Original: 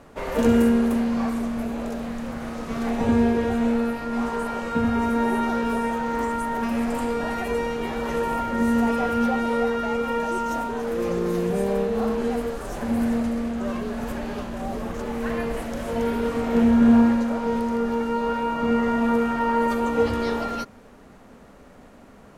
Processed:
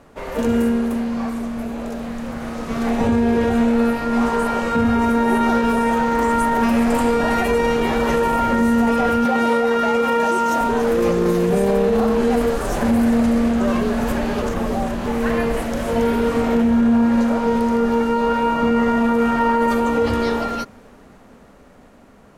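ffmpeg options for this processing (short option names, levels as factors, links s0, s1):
-filter_complex "[0:a]asettb=1/sr,asplit=3[s0][s1][s2];[s0]atrim=end=9.254[s3];[s1]atrim=start=9.25:end=10.61,asetpts=PTS-STARTPTS,afade=t=in:d=0.004:c=qsin,afade=t=out:st=1.356:d=0.004:c=qsin,highpass=f=220:p=1[s4];[s2]atrim=start=10.606[s5];[s3][s4]acrossfade=d=0.004:c1=hsin:c2=qsin[s6];[s6][s5]acrossfade=d=0.004:c1=qsin:c2=hsin,asplit=3[s7][s8][s9];[s7]atrim=end=14.422[s10];[s8]atrim=start=14.418:end=15.062,asetpts=PTS-STARTPTS,areverse[s11];[s9]atrim=start=15.058[s12];[s10][s11]acrossfade=d=0.004:c1=hsin:c2=hsin[s13];[s13][s12]acrossfade=d=0.004:c1=hsin:c2=hsin,dynaudnorm=f=460:g=11:m=3.76,alimiter=limit=0.316:level=0:latency=1:release=17"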